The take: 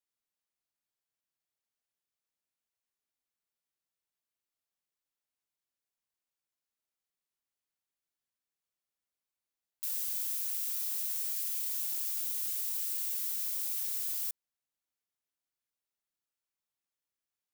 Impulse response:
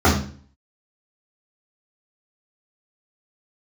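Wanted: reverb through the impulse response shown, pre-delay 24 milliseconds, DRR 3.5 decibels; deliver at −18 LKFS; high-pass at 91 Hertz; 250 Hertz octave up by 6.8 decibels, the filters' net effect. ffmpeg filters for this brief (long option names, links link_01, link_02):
-filter_complex "[0:a]highpass=91,equalizer=frequency=250:width_type=o:gain=9,asplit=2[link_01][link_02];[1:a]atrim=start_sample=2205,adelay=24[link_03];[link_02][link_03]afir=irnorm=-1:irlink=0,volume=-26.5dB[link_04];[link_01][link_04]amix=inputs=2:normalize=0,volume=13.5dB"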